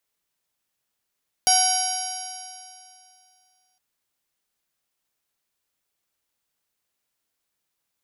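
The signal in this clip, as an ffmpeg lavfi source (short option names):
-f lavfi -i "aevalsrc='0.106*pow(10,-3*t/2.52)*sin(2*PI*743.37*t)+0.0251*pow(10,-3*t/2.52)*sin(2*PI*1494.94*t)+0.0211*pow(10,-3*t/2.52)*sin(2*PI*2262.76*t)+0.0376*pow(10,-3*t/2.52)*sin(2*PI*3054.59*t)+0.02*pow(10,-3*t/2.52)*sin(2*PI*3877.79*t)+0.0794*pow(10,-3*t/2.52)*sin(2*PI*4739.24*t)+0.119*pow(10,-3*t/2.52)*sin(2*PI*5645.24*t)+0.0531*pow(10,-3*t/2.52)*sin(2*PI*6601.52*t)+0.0119*pow(10,-3*t/2.52)*sin(2*PI*7613.21*t)+0.0158*pow(10,-3*t/2.52)*sin(2*PI*8684.89*t)+0.0126*pow(10,-3*t/2.52)*sin(2*PI*9820.55*t)+0.1*pow(10,-3*t/2.52)*sin(2*PI*11023.71*t)':d=2.31:s=44100"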